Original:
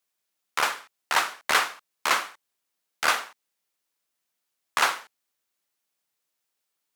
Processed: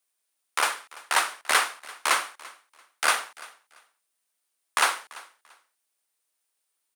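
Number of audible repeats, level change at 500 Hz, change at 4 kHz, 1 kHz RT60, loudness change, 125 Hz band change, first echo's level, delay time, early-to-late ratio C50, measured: 2, -1.0 dB, 0.0 dB, none, 0.0 dB, n/a, -21.0 dB, 0.34 s, none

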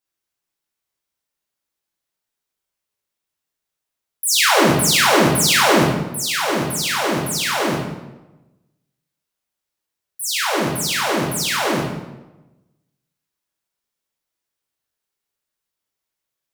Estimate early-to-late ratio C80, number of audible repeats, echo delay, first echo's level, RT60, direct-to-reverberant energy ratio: 5.5 dB, none, none, none, 1.0 s, -3.5 dB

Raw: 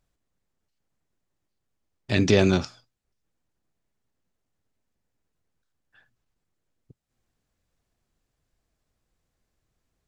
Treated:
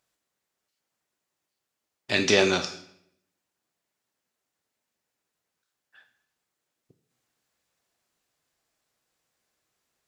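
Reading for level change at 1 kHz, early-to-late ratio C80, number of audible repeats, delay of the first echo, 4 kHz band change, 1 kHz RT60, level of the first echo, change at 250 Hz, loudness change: +2.5 dB, 15.0 dB, none, none, +5.0 dB, 0.65 s, none, -6.0 dB, -1.5 dB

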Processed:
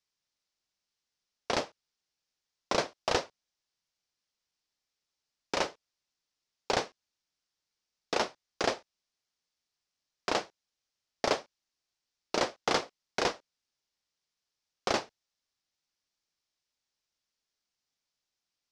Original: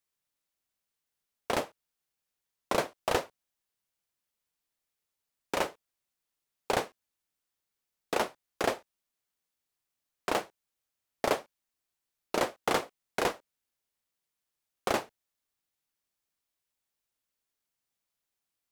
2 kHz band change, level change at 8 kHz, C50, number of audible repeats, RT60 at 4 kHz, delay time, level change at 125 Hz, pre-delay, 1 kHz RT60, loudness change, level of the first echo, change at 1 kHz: 0.0 dB, +1.0 dB, none, none, none, none, -1.0 dB, none, none, 0.0 dB, none, -1.0 dB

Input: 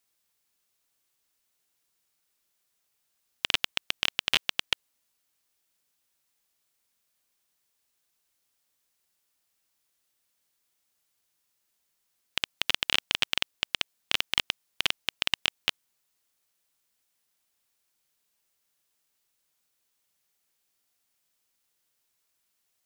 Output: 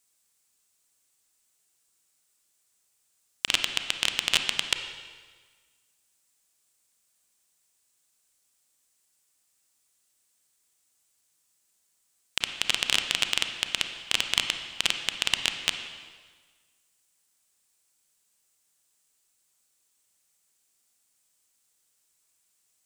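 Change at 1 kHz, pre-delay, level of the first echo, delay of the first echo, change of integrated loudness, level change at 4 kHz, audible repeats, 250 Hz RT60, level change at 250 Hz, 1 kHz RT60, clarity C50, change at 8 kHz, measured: +1.0 dB, 29 ms, none, none, +2.0 dB, +2.0 dB, none, 1.5 s, +1.5 dB, 1.5 s, 7.0 dB, +8.0 dB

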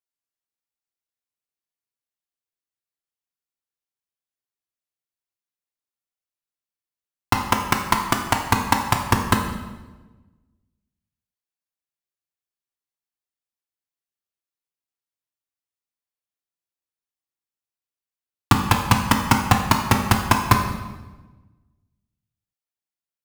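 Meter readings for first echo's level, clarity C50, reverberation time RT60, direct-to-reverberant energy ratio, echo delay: none, 6.0 dB, 1.2 s, 2.0 dB, none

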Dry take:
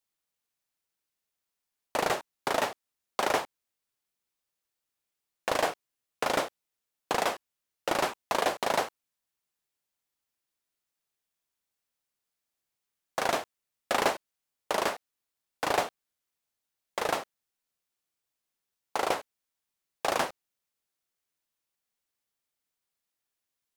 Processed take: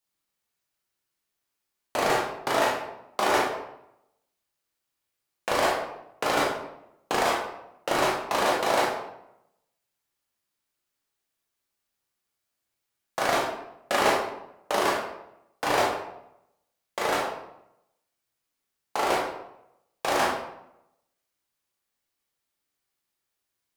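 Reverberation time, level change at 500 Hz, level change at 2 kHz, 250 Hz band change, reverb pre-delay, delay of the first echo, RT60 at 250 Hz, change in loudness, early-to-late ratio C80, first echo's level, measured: 0.80 s, +4.5 dB, +5.0 dB, +6.0 dB, 15 ms, none, 0.90 s, +4.0 dB, 6.0 dB, none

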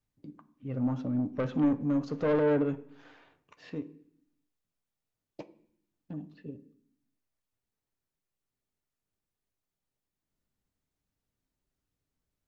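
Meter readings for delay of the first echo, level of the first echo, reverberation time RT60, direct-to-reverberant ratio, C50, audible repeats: none, none, 0.65 s, 9.0 dB, 17.0 dB, none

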